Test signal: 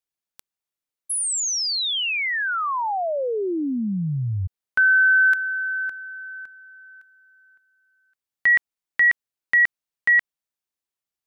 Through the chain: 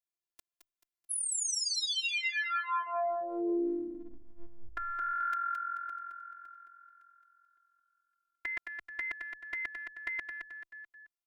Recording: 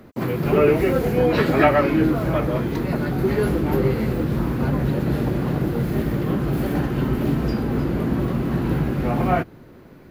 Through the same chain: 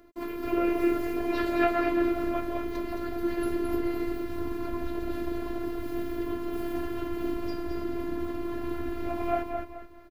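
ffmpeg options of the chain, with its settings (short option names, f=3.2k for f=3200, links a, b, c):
-filter_complex "[0:a]asplit=5[a][b][c][d][e];[b]adelay=217,afreqshift=-43,volume=-5.5dB[f];[c]adelay=434,afreqshift=-86,volume=-14.4dB[g];[d]adelay=651,afreqshift=-129,volume=-23.2dB[h];[e]adelay=868,afreqshift=-172,volume=-32.1dB[i];[a][f][g][h][i]amix=inputs=5:normalize=0,afftfilt=real='hypot(re,im)*cos(PI*b)':imag='0':win_size=512:overlap=0.75,volume=-6dB"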